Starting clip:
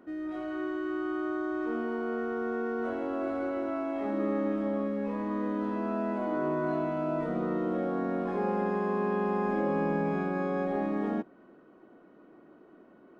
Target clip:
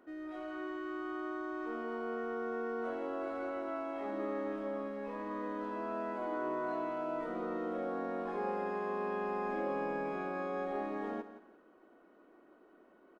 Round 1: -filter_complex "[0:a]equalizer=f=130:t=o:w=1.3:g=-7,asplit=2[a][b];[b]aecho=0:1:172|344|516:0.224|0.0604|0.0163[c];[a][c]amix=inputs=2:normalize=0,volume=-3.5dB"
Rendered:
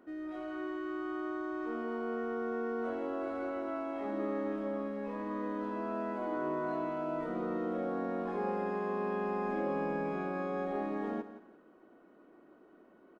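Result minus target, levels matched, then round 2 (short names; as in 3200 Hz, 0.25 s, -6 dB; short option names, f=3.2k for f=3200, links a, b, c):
125 Hz band +4.5 dB
-filter_complex "[0:a]equalizer=f=130:t=o:w=1.3:g=-18.5,asplit=2[a][b];[b]aecho=0:1:172|344|516:0.224|0.0604|0.0163[c];[a][c]amix=inputs=2:normalize=0,volume=-3.5dB"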